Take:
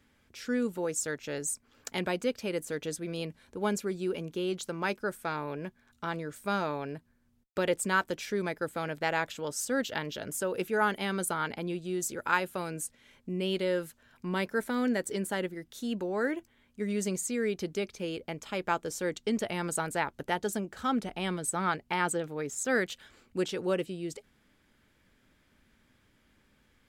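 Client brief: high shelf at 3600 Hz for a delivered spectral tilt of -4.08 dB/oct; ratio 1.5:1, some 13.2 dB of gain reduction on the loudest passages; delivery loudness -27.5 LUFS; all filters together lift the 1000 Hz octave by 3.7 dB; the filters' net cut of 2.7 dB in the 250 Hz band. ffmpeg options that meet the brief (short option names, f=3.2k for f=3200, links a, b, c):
-af "equalizer=f=250:t=o:g=-4,equalizer=f=1k:t=o:g=5.5,highshelf=f=3.6k:g=-5.5,acompressor=threshold=-57dB:ratio=1.5,volume=15.5dB"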